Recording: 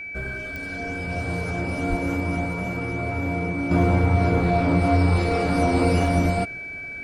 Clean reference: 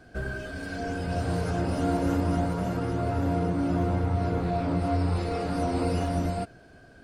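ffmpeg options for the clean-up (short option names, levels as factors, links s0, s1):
-filter_complex "[0:a]adeclick=t=4,bandreject=f=2300:w=30,asplit=3[s0][s1][s2];[s0]afade=t=out:st=1.89:d=0.02[s3];[s1]highpass=f=140:w=0.5412,highpass=f=140:w=1.3066,afade=t=in:st=1.89:d=0.02,afade=t=out:st=2.01:d=0.02[s4];[s2]afade=t=in:st=2.01:d=0.02[s5];[s3][s4][s5]amix=inputs=3:normalize=0,asetnsamples=n=441:p=0,asendcmd='3.71 volume volume -7dB',volume=1"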